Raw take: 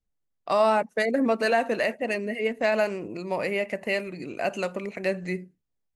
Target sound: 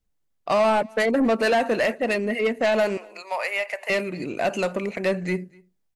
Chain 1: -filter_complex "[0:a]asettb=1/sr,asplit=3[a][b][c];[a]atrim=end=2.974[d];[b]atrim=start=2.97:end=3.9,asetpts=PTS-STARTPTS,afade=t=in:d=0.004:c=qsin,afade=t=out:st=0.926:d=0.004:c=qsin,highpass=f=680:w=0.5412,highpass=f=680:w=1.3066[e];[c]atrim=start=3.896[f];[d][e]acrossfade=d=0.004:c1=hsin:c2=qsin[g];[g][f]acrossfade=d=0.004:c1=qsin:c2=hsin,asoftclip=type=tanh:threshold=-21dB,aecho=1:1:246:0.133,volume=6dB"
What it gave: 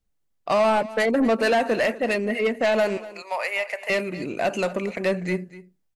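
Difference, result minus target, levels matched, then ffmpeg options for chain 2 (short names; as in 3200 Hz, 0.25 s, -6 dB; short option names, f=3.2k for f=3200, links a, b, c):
echo-to-direct +9.5 dB
-filter_complex "[0:a]asettb=1/sr,asplit=3[a][b][c];[a]atrim=end=2.974[d];[b]atrim=start=2.97:end=3.9,asetpts=PTS-STARTPTS,afade=t=in:d=0.004:c=qsin,afade=t=out:st=0.926:d=0.004:c=qsin,highpass=f=680:w=0.5412,highpass=f=680:w=1.3066[e];[c]atrim=start=3.896[f];[d][e]acrossfade=d=0.004:c1=hsin:c2=qsin[g];[g][f]acrossfade=d=0.004:c1=qsin:c2=hsin,asoftclip=type=tanh:threshold=-21dB,aecho=1:1:246:0.0447,volume=6dB"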